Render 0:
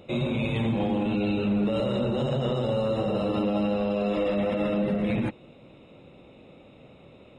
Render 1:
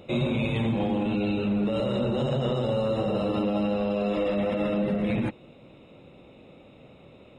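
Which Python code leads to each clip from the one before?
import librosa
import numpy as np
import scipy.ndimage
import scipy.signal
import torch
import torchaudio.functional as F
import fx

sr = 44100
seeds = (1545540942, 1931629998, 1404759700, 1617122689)

y = fx.rider(x, sr, range_db=10, speed_s=0.5)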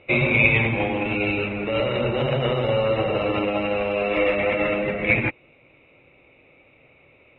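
y = fx.lowpass_res(x, sr, hz=2300.0, q=6.4)
y = fx.peak_eq(y, sr, hz=200.0, db=-11.0, octaves=0.54)
y = fx.upward_expand(y, sr, threshold_db=-47.0, expansion=1.5)
y = y * librosa.db_to_amplitude(7.5)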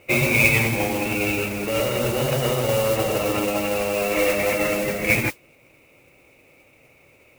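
y = fx.mod_noise(x, sr, seeds[0], snr_db=11)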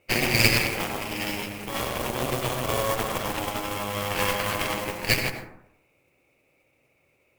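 y = fx.cheby_harmonics(x, sr, harmonics=(3, 4), levels_db=(-12, -9), full_scale_db=-3.5)
y = fx.rev_plate(y, sr, seeds[1], rt60_s=0.79, hf_ratio=0.35, predelay_ms=75, drr_db=6.5)
y = y * librosa.db_to_amplitude(-1.0)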